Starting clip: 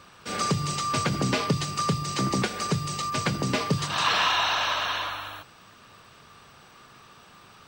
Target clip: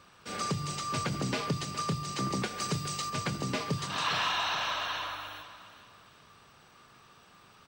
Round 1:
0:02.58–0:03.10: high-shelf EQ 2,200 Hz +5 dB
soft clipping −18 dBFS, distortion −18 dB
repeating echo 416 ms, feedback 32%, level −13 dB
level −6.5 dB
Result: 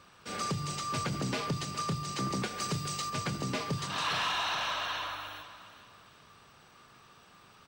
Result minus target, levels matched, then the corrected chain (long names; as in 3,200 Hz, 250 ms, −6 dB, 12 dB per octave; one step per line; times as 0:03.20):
soft clipping: distortion +13 dB
0:02.58–0:03.10: high-shelf EQ 2,200 Hz +5 dB
soft clipping −10 dBFS, distortion −30 dB
repeating echo 416 ms, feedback 32%, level −13 dB
level −6.5 dB